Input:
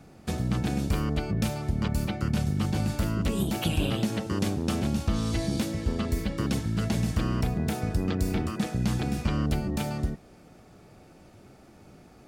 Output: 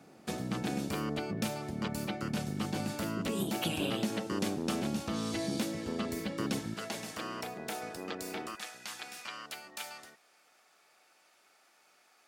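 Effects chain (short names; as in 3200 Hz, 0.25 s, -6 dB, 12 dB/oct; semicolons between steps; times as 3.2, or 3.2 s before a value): HPF 220 Hz 12 dB/oct, from 6.74 s 490 Hz, from 8.55 s 1200 Hz; gain -2.5 dB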